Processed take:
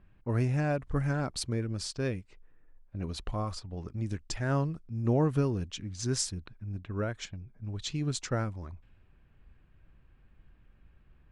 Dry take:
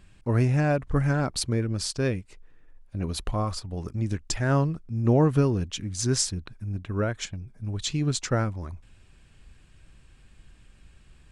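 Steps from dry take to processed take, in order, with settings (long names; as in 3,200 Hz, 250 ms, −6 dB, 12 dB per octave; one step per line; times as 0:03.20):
low-pass that shuts in the quiet parts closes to 1,600 Hz, open at −23 dBFS
level −6 dB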